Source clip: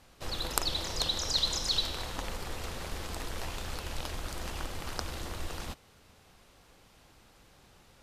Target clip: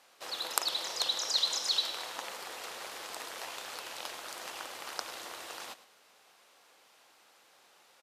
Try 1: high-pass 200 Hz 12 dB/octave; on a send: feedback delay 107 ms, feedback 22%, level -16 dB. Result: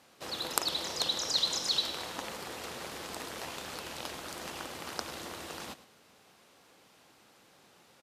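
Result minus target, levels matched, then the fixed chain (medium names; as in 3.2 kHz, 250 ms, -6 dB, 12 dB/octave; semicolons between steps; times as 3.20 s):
250 Hz band +10.5 dB
high-pass 560 Hz 12 dB/octave; on a send: feedback delay 107 ms, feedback 22%, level -16 dB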